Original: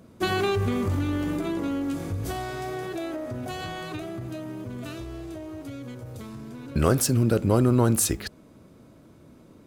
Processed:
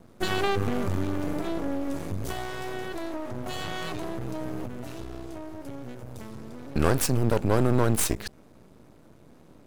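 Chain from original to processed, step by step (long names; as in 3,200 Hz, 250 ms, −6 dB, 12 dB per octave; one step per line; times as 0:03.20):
half-wave rectification
0:03.46–0:04.66: envelope flattener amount 100%
level +2 dB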